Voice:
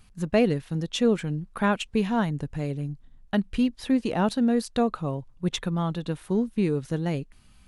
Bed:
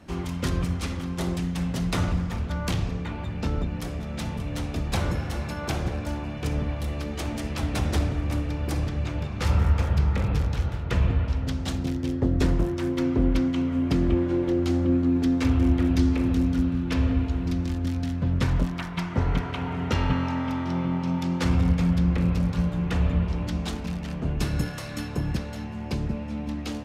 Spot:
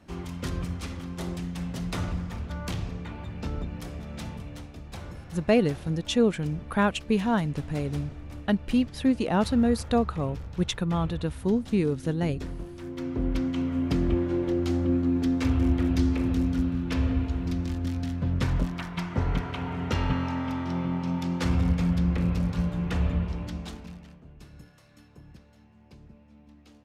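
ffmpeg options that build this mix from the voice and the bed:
ffmpeg -i stem1.wav -i stem2.wav -filter_complex "[0:a]adelay=5150,volume=0dB[link_01];[1:a]volume=6dB,afade=type=out:start_time=4.25:duration=0.47:silence=0.375837,afade=type=in:start_time=12.74:duration=0.91:silence=0.266073,afade=type=out:start_time=23.05:duration=1.18:silence=0.1[link_02];[link_01][link_02]amix=inputs=2:normalize=0" out.wav

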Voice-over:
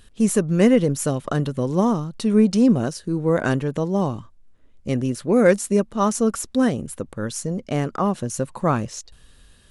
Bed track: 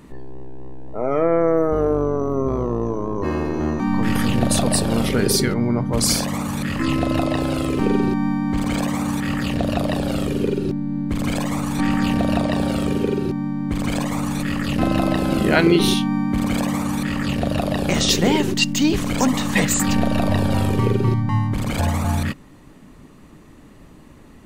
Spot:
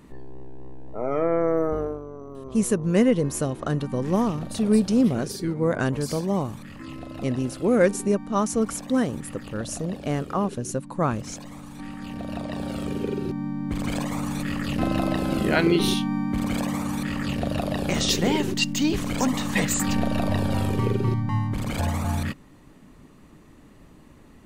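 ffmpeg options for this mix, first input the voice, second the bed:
ffmpeg -i stem1.wav -i stem2.wav -filter_complex "[0:a]adelay=2350,volume=-3.5dB[link_01];[1:a]volume=7.5dB,afade=type=out:start_time=1.68:duration=0.33:silence=0.237137,afade=type=in:start_time=11.99:duration=1.48:silence=0.237137[link_02];[link_01][link_02]amix=inputs=2:normalize=0" out.wav

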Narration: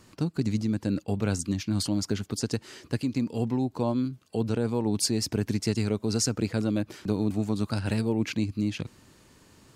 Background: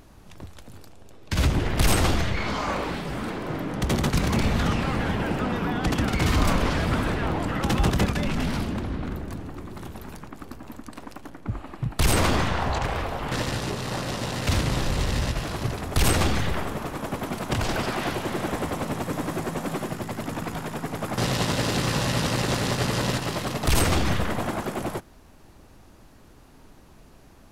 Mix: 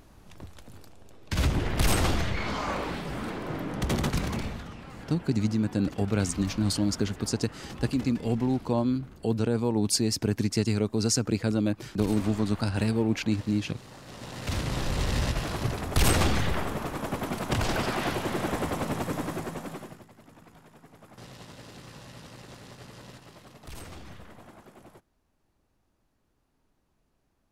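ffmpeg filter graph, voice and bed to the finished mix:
ffmpeg -i stem1.wav -i stem2.wav -filter_complex "[0:a]adelay=4900,volume=1dB[link_01];[1:a]volume=13.5dB,afade=type=out:start_time=4.03:duration=0.62:silence=0.177828,afade=type=in:start_time=14.02:duration=1.2:silence=0.141254,afade=type=out:start_time=19.02:duration=1.06:silence=0.0944061[link_02];[link_01][link_02]amix=inputs=2:normalize=0" out.wav

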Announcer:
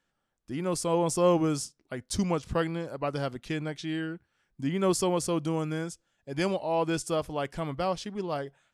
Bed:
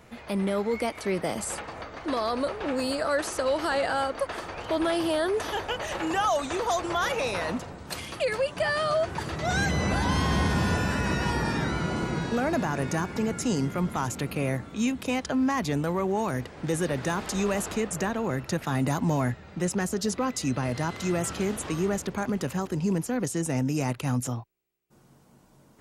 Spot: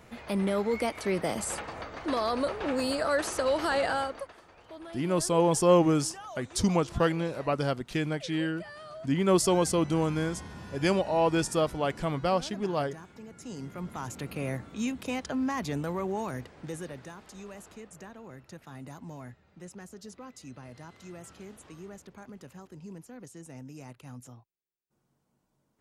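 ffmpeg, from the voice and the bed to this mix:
ffmpeg -i stem1.wav -i stem2.wav -filter_complex "[0:a]adelay=4450,volume=2.5dB[link_01];[1:a]volume=13dB,afade=type=out:start_time=3.89:duration=0.44:silence=0.125893,afade=type=in:start_time=13.3:duration=1.21:silence=0.199526,afade=type=out:start_time=16.1:duration=1.04:silence=0.223872[link_02];[link_01][link_02]amix=inputs=2:normalize=0" out.wav

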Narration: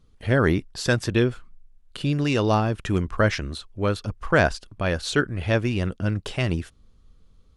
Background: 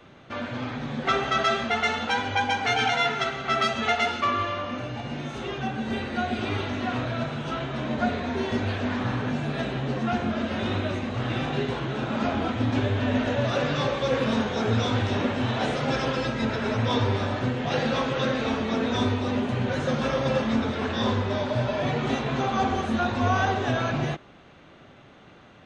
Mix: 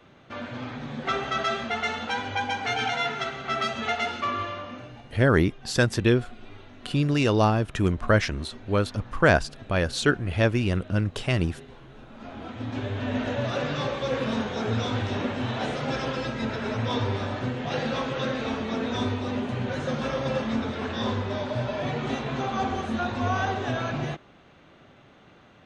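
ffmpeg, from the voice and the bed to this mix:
ffmpeg -i stem1.wav -i stem2.wav -filter_complex "[0:a]adelay=4900,volume=0dB[link_01];[1:a]volume=12.5dB,afade=type=out:start_time=4.42:duration=0.75:silence=0.16788,afade=type=in:start_time=12.16:duration=1.09:silence=0.158489[link_02];[link_01][link_02]amix=inputs=2:normalize=0" out.wav

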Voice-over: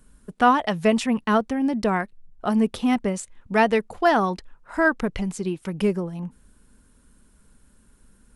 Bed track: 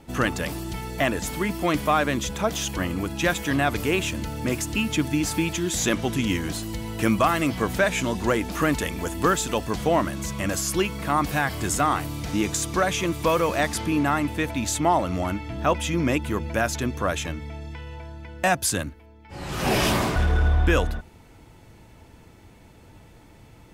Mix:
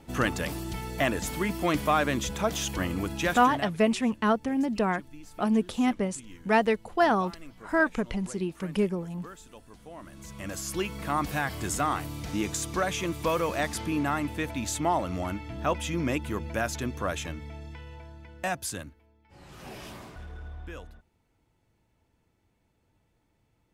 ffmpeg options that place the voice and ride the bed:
ffmpeg -i stem1.wav -i stem2.wav -filter_complex "[0:a]adelay=2950,volume=-4dB[link_01];[1:a]volume=16dB,afade=type=out:start_time=3.13:duration=0.62:silence=0.0841395,afade=type=in:start_time=9.96:duration=1.04:silence=0.112202,afade=type=out:start_time=17.6:duration=2.14:silence=0.158489[link_02];[link_01][link_02]amix=inputs=2:normalize=0" out.wav

